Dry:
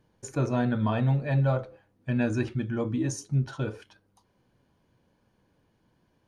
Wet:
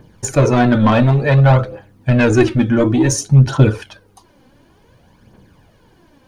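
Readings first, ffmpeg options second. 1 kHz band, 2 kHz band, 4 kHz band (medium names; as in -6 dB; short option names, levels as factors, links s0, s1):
+16.0 dB, +16.0 dB, +17.5 dB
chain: -af "apsyclip=6.68,aeval=exprs='1.12*(cos(1*acos(clip(val(0)/1.12,-1,1)))-cos(1*PI/2))+0.0224*(cos(2*acos(clip(val(0)/1.12,-1,1)))-cos(2*PI/2))+0.158*(cos(5*acos(clip(val(0)/1.12,-1,1)))-cos(5*PI/2))+0.0178*(cos(7*acos(clip(val(0)/1.12,-1,1)))-cos(7*PI/2))':c=same,aphaser=in_gain=1:out_gain=1:delay=3.9:decay=0.51:speed=0.56:type=triangular,volume=0.668"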